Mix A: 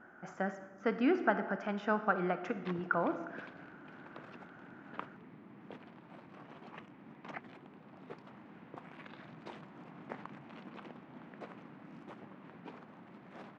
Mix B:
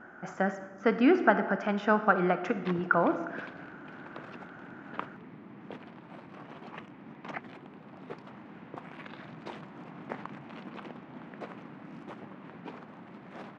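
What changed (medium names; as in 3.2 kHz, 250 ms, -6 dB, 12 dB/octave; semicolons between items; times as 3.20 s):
speech +7.0 dB; background +6.0 dB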